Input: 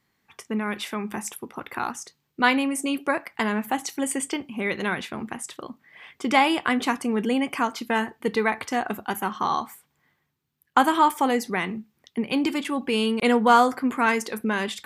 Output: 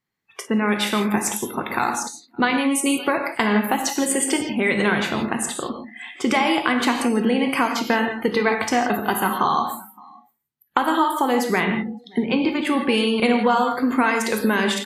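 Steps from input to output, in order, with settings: compressor 10:1, threshold -25 dBFS, peak gain reduction 13.5 dB; 12.19–12.67 high shelf 4200 Hz -11.5 dB; echo 0.568 s -23.5 dB; non-linear reverb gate 0.19 s flat, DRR 3.5 dB; spectral noise reduction 20 dB; gain +8.5 dB

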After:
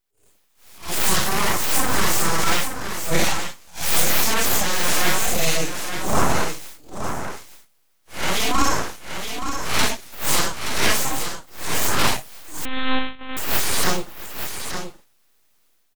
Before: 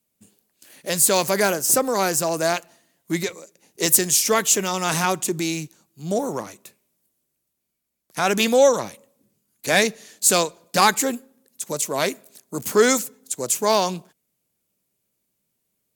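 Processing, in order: phase scrambler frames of 0.2 s; 12.35–13.83 spectral delete 210–1600 Hz; AGC gain up to 14 dB; transient shaper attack -12 dB, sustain +2 dB; full-wave rectifier; on a send: echo 0.874 s -8 dB; 12.65–13.37 on the sum: monotone LPC vocoder at 8 kHz 260 Hz; gain -1 dB

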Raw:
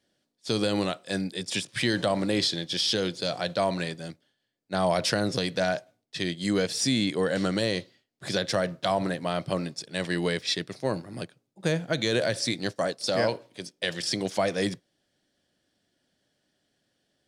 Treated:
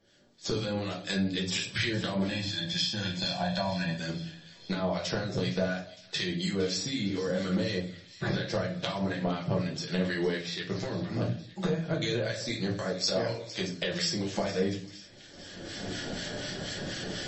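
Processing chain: recorder AGC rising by 25 dB/s; 2.27–3.96 comb 1.2 ms, depth 100%; harmonic-percussive split percussive -4 dB; compressor 20:1, threshold -36 dBFS, peak gain reduction 18.5 dB; harmonic tremolo 4.1 Hz, depth 70%, crossover 1200 Hz; 7.77–8.5 running mean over 5 samples; on a send: thin delay 0.46 s, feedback 64%, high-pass 2300 Hz, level -15 dB; on the sum: shoebox room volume 33 m³, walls mixed, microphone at 0.72 m; gain +8.5 dB; MP3 32 kbps 32000 Hz

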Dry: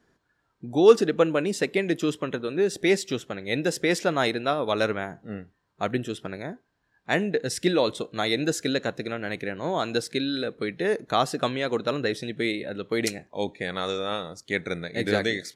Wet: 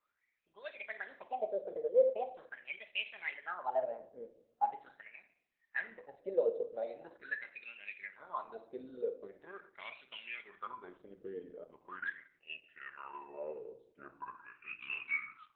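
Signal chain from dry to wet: speed glide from 137% -> 63%; wah 0.42 Hz 460–2700 Hz, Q 15; on a send at -6 dB: reverb RT60 0.65 s, pre-delay 5 ms; on the sum: gain +1.5 dB; Opus 8 kbps 48000 Hz

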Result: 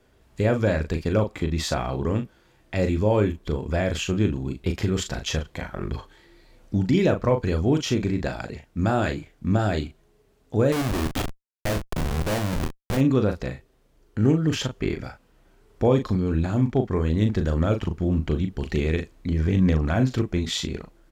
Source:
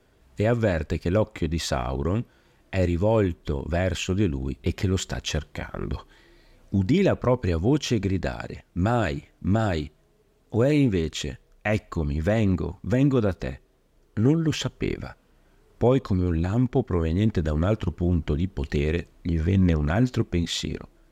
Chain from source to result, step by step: 10.72–12.97 Schmitt trigger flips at -25 dBFS; doubler 38 ms -7 dB

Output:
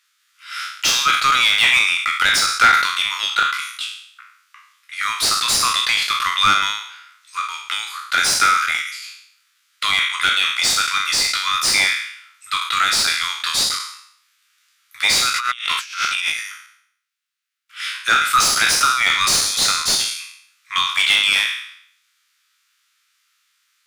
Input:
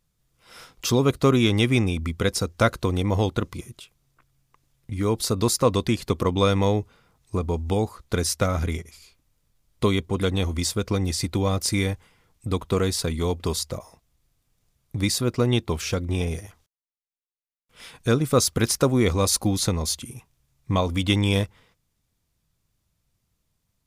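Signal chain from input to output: spectral trails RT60 0.66 s; elliptic high-pass 1300 Hz, stop band 50 dB; 15.3–16.32 negative-ratio compressor -38 dBFS, ratio -0.5; overdrive pedal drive 21 dB, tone 2600 Hz, clips at -7 dBFS; gain +5 dB

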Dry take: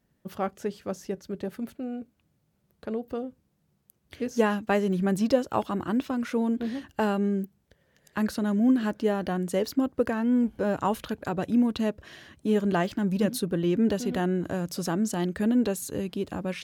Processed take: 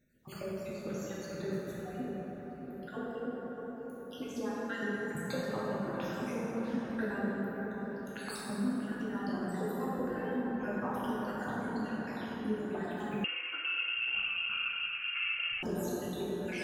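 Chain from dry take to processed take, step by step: random spectral dropouts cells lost 72%; compressor, threshold -41 dBFS, peak gain reduction 22 dB; dark delay 0.637 s, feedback 55%, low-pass 1700 Hz, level -7 dB; plate-style reverb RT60 4.2 s, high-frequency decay 0.4×, DRR -8 dB; 13.24–15.63 inverted band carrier 3000 Hz

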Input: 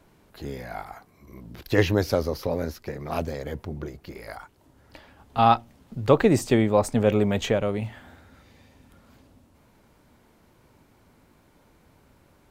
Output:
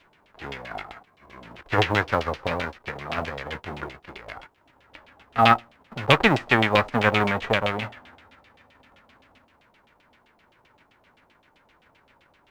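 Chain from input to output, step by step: spectral whitening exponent 0.3; LFO low-pass saw down 7.7 Hz 630–3300 Hz; companded quantiser 8-bit; gain -1 dB

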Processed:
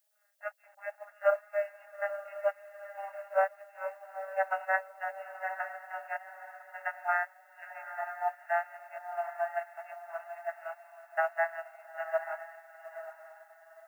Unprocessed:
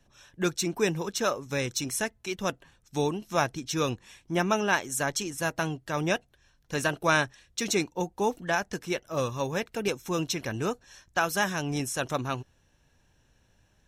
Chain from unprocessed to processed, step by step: vocoder on a gliding note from G#3, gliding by -5 st; wow and flutter 27 cents; in parallel at -9.5 dB: requantised 6-bit, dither none; on the sum: fixed phaser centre 1600 Hz, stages 8; FFT band-pass 560–2800 Hz; added noise blue -69 dBFS; on a send: diffused feedback echo 0.902 s, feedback 43%, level -5.5 dB; on the sum: upward expander 1.5:1, over -52 dBFS; gain +5.5 dB

